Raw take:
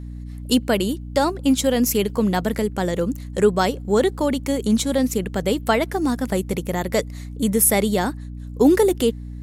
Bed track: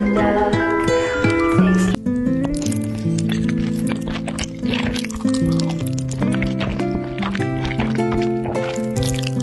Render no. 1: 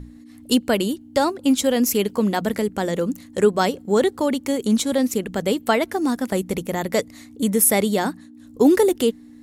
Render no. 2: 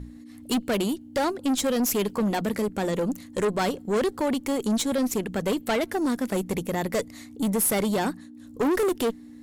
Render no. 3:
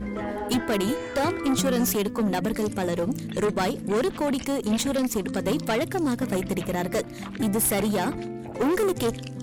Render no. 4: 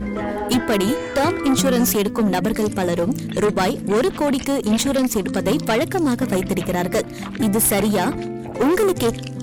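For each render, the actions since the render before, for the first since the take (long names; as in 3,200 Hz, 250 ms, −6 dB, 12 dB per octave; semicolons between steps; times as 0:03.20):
mains-hum notches 60/120/180 Hz
tube saturation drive 20 dB, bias 0.25
mix in bed track −14.5 dB
level +6 dB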